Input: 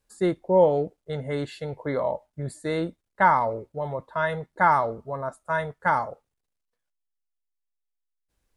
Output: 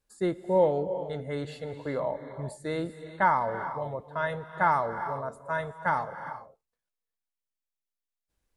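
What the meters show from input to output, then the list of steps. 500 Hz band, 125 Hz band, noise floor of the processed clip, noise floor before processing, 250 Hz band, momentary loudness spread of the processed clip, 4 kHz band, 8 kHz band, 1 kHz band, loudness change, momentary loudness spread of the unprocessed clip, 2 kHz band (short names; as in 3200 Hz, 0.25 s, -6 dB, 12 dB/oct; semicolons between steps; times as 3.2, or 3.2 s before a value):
-4.0 dB, -4.0 dB, under -85 dBFS, -81 dBFS, -4.0 dB, 13 LU, -4.0 dB, n/a, -4.0 dB, -4.5 dB, 13 LU, -4.0 dB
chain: non-linear reverb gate 0.43 s rising, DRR 10 dB; gain -4.5 dB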